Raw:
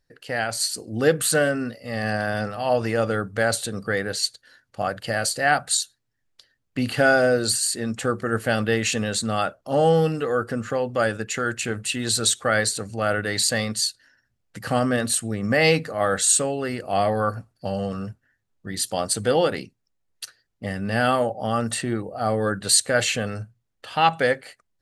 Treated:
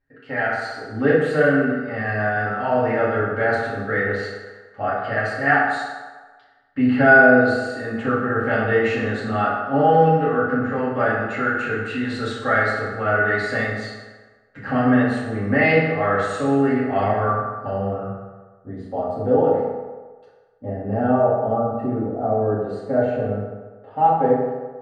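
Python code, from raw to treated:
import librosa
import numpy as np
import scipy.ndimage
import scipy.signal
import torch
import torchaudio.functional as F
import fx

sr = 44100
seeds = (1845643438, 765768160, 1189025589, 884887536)

y = fx.spec_erase(x, sr, start_s=21.55, length_s=0.24, low_hz=1600.0, high_hz=9700.0)
y = fx.filter_sweep_lowpass(y, sr, from_hz=1800.0, to_hz=670.0, start_s=17.45, end_s=18.64, q=1.4)
y = fx.rev_fdn(y, sr, rt60_s=1.4, lf_ratio=0.75, hf_ratio=0.6, size_ms=22.0, drr_db=-8.5)
y = y * librosa.db_to_amplitude(-7.0)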